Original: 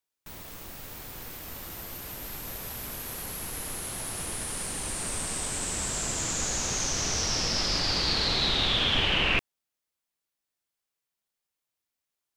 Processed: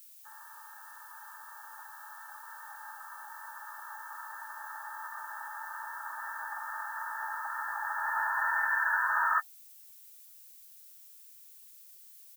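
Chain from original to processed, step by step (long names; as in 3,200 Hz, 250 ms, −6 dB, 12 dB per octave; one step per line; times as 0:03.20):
pitch-shifted copies added −12 semitones −1 dB, −5 semitones −6 dB
brick-wall band-pass 780–2,200 Hz
phase-vocoder pitch shift with formants kept −3.5 semitones
background noise violet −54 dBFS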